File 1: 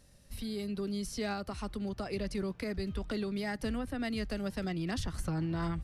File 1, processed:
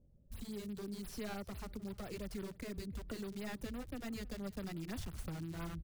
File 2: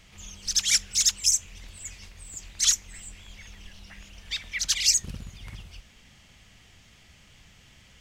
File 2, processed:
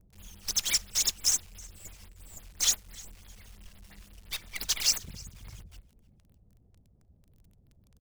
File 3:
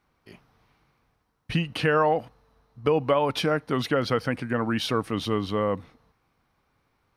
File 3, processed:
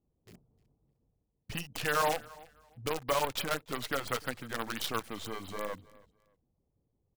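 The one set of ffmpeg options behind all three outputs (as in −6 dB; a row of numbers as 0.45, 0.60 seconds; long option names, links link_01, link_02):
-filter_complex "[0:a]acrossover=split=590[link_01][link_02];[link_01]acompressor=threshold=-36dB:ratio=6[link_03];[link_02]acrusher=bits=5:dc=4:mix=0:aa=0.000001[link_04];[link_03][link_04]amix=inputs=2:normalize=0,aecho=1:1:305|610:0.075|0.018,afftfilt=real='re*(1-between(b*sr/1024,210*pow(7600/210,0.5+0.5*sin(2*PI*5.9*pts/sr))/1.41,210*pow(7600/210,0.5+0.5*sin(2*PI*5.9*pts/sr))*1.41))':imag='im*(1-between(b*sr/1024,210*pow(7600/210,0.5+0.5*sin(2*PI*5.9*pts/sr))/1.41,210*pow(7600/210,0.5+0.5*sin(2*PI*5.9*pts/sr))*1.41))':win_size=1024:overlap=0.75,volume=-4dB"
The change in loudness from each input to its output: −8.5, −4.5, −8.5 LU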